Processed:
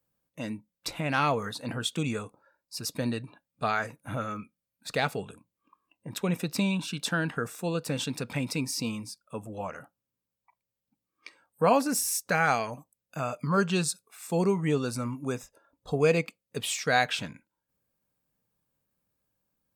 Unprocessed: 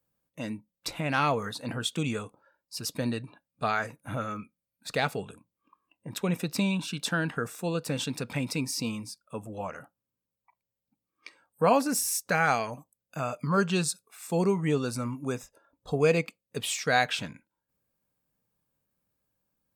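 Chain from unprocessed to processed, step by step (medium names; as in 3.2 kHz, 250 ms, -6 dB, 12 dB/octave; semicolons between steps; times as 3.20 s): 2.02–2.93 s: band-stop 3.1 kHz, Q 5.5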